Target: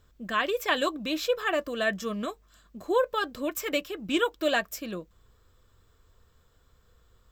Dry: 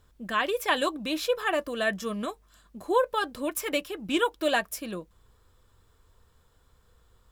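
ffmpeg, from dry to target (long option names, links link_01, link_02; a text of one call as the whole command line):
ffmpeg -i in.wav -af "superequalizer=9b=0.631:16b=0.282" out.wav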